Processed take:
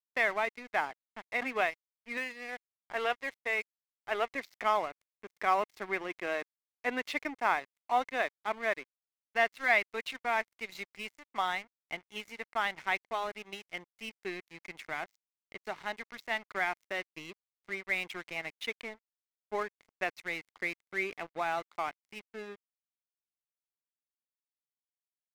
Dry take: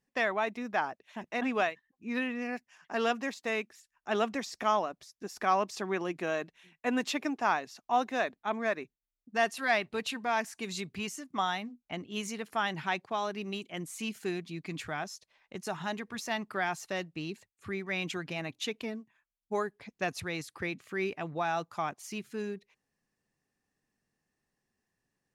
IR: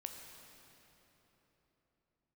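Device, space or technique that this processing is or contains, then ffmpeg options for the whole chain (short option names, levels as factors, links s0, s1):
pocket radio on a weak battery: -filter_complex "[0:a]asettb=1/sr,asplit=3[s0][s1][s2];[s0]atrim=end=2.174[s3];[s1]atrim=start=2.17:end=4.35,asetpts=PTS-STARTPTS,afade=t=in:d=0.004:c=qsin,afade=t=out:st=2.176:d=0.004:c=qsin,bass=f=250:g=-12,treble=f=4000:g=-5[s4];[s2]atrim=start=4.346[s5];[s3][s4]acrossfade=d=0.004:c1=hsin:c2=qsin[s6];[s6][s5]acrossfade=d=0.004:c1=qsin:c2=hsin,highpass=360,lowpass=4000,aeval=exprs='sgn(val(0))*max(abs(val(0))-0.00562,0)':c=same,equalizer=f=2100:t=o:w=0.21:g=10.5"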